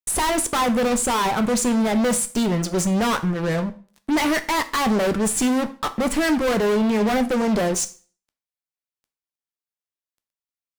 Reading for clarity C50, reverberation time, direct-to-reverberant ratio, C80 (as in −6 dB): 16.0 dB, 0.40 s, 10.0 dB, 20.5 dB